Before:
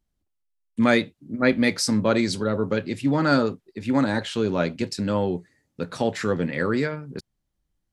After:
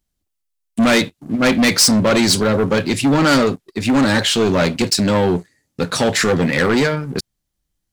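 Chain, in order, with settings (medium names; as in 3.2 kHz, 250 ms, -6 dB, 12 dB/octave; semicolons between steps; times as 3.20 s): saturation -20.5 dBFS, distortion -9 dB; treble shelf 2.8 kHz +9 dB; waveshaping leveller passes 2; trim +4.5 dB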